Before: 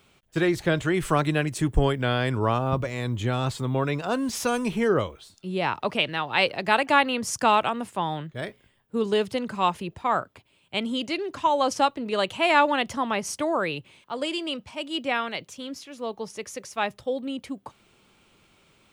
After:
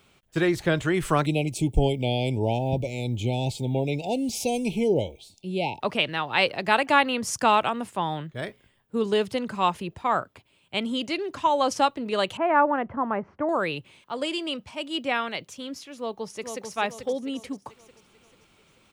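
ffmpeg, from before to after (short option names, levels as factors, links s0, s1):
-filter_complex "[0:a]asettb=1/sr,asplit=3[s0][s1][s2];[s0]atrim=end=1.264[s3];[s1]atrim=start=1.26:end=5.81,asetpts=PTS-STARTPTS,afade=t=in:d=0.004:c=qsin,afade=t=out:st=4.546:d=0.004:c=qsin,asuperstop=centerf=1400:order=20:qfactor=1.1[s4];[s2]atrim=start=5.806[s5];[s3][s4]acrossfade=d=0.004:c1=hsin:c2=qsin[s6];[s6][s5]acrossfade=d=0.004:c1=qsin:c2=hsin,asettb=1/sr,asplit=3[s7][s8][s9];[s7]atrim=end=12.374[s10];[s8]atrim=start=12.37:end=13.49,asetpts=PTS-STARTPTS,afade=t=in:d=0.004:c=qsin,afade=t=out:st=1.116:d=0.004:c=qsin,lowpass=f=1600:w=0.5412,lowpass=f=1600:w=1.3066[s11];[s9]atrim=start=13.486[s12];[s10][s11]acrossfade=d=0.004:c1=hsin:c2=qsin[s13];[s13][s12]acrossfade=d=0.004:c1=qsin:c2=hsin,asplit=2[s14][s15];[s15]afade=t=in:st=15.97:d=0.01,afade=t=out:st=16.68:d=0.01,aecho=0:1:440|880|1320|1760|2200:0.501187|0.225534|0.10149|0.0456707|0.0205518[s16];[s14][s16]amix=inputs=2:normalize=0"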